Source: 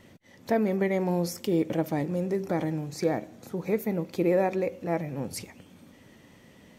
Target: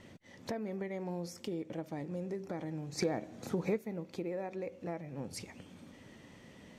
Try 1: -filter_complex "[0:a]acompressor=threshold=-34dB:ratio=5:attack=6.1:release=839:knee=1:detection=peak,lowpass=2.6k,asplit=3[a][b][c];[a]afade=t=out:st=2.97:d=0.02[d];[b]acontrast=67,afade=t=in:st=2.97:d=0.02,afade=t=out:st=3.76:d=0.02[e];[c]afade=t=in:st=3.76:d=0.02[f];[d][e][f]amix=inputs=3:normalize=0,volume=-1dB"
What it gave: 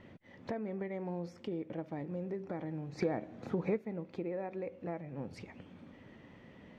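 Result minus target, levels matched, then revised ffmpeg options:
8000 Hz band -16.5 dB
-filter_complex "[0:a]acompressor=threshold=-34dB:ratio=5:attack=6.1:release=839:knee=1:detection=peak,lowpass=9.1k,asplit=3[a][b][c];[a]afade=t=out:st=2.97:d=0.02[d];[b]acontrast=67,afade=t=in:st=2.97:d=0.02,afade=t=out:st=3.76:d=0.02[e];[c]afade=t=in:st=3.76:d=0.02[f];[d][e][f]amix=inputs=3:normalize=0,volume=-1dB"

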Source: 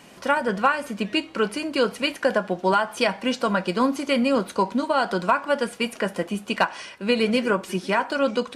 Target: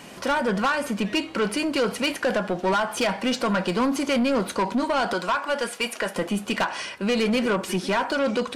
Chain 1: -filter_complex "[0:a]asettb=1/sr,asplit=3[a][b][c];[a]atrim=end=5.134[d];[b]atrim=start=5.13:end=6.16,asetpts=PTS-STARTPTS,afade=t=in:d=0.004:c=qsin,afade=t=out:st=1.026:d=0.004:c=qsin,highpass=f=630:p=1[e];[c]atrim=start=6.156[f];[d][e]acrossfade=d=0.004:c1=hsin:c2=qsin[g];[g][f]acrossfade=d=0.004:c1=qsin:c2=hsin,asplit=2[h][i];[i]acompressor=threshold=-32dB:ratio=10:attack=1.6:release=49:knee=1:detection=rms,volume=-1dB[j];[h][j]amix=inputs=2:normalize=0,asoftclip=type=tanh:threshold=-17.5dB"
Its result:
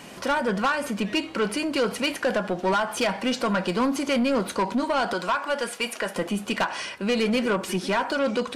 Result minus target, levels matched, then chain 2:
compressor: peak gain reduction +7 dB
-filter_complex "[0:a]asettb=1/sr,asplit=3[a][b][c];[a]atrim=end=5.134[d];[b]atrim=start=5.13:end=6.16,asetpts=PTS-STARTPTS,afade=t=in:d=0.004:c=qsin,afade=t=out:st=1.026:d=0.004:c=qsin,highpass=f=630:p=1[e];[c]atrim=start=6.156[f];[d][e]acrossfade=d=0.004:c1=hsin:c2=qsin[g];[g][f]acrossfade=d=0.004:c1=qsin:c2=hsin,asplit=2[h][i];[i]acompressor=threshold=-24dB:ratio=10:attack=1.6:release=49:knee=1:detection=rms,volume=-1dB[j];[h][j]amix=inputs=2:normalize=0,asoftclip=type=tanh:threshold=-17.5dB"

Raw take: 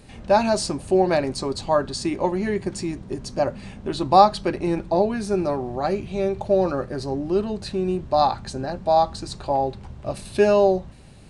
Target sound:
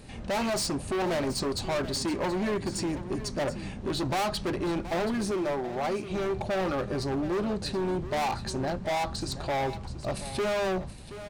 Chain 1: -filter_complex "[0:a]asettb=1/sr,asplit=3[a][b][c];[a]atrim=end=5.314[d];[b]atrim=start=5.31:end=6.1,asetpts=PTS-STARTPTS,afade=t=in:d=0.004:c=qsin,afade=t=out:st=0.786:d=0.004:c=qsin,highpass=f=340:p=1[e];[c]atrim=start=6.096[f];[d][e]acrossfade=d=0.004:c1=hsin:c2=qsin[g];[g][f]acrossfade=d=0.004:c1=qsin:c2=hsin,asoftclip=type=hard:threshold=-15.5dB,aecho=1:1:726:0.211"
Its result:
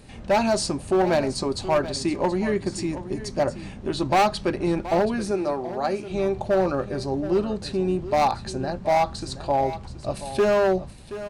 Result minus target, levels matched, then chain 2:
hard clip: distortion -7 dB
-filter_complex "[0:a]asettb=1/sr,asplit=3[a][b][c];[a]atrim=end=5.314[d];[b]atrim=start=5.31:end=6.1,asetpts=PTS-STARTPTS,afade=t=in:d=0.004:c=qsin,afade=t=out:st=0.786:d=0.004:c=qsin,highpass=f=340:p=1[e];[c]atrim=start=6.096[f];[d][e]acrossfade=d=0.004:c1=hsin:c2=qsin[g];[g][f]acrossfade=d=0.004:c1=qsin:c2=hsin,asoftclip=type=hard:threshold=-26.5dB,aecho=1:1:726:0.211"

